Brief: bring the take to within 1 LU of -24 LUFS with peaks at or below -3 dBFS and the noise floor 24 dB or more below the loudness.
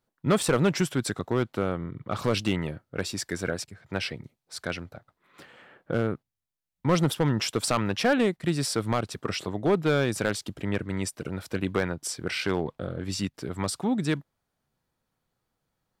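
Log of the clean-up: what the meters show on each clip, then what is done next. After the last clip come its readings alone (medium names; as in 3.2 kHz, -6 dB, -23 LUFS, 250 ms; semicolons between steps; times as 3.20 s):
clipped samples 0.5%; clipping level -16.0 dBFS; dropouts 2; longest dropout 2.6 ms; loudness -28.5 LUFS; peak level -16.0 dBFS; loudness target -24.0 LUFS
-> clip repair -16 dBFS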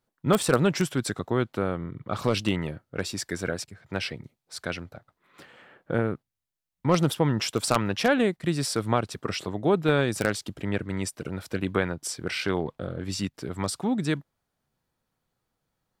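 clipped samples 0.0%; dropouts 2; longest dropout 2.6 ms
-> interpolate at 0.43/4.56 s, 2.6 ms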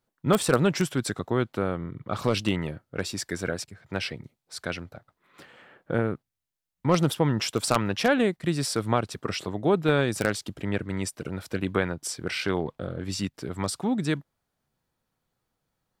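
dropouts 0; loudness -27.5 LUFS; peak level -7.0 dBFS; loudness target -24.0 LUFS
-> trim +3.5 dB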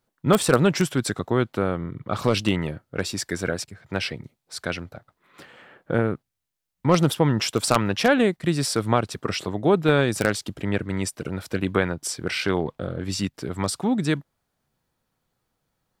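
loudness -24.0 LUFS; peak level -3.5 dBFS; noise floor -79 dBFS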